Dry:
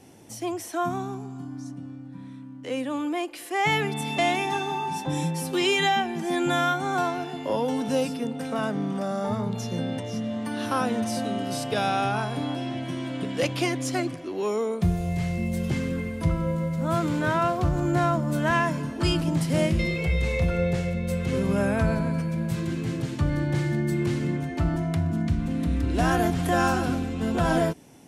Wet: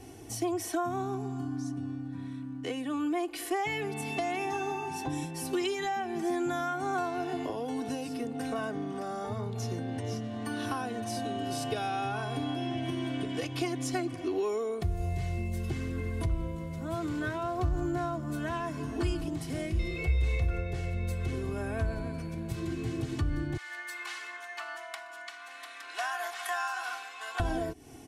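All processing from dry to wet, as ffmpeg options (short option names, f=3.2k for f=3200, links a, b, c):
-filter_complex "[0:a]asettb=1/sr,asplit=3[a][b][c];[a]atrim=end=23.574[d];[b]atrim=start=23.57:end=27.4,asetpts=PTS-STARTPTS,afade=t=in:d=0.004:c=qsin,afade=t=out:st=3.826:d=0.004:c=qsin,highpass=f=950:w=0.5412,highpass=f=950:w=1.3066,highshelf=f=5k:g=-6[e];[c]atrim=start=27.396[f];[d][e]acrossfade=d=0.004:c1=hsin:c2=qsin[g];[g][f]acrossfade=d=0.004:c1=qsin:c2=hsin,acompressor=threshold=-32dB:ratio=10,lowshelf=f=110:g=9.5,aecho=1:1:2.7:0.72"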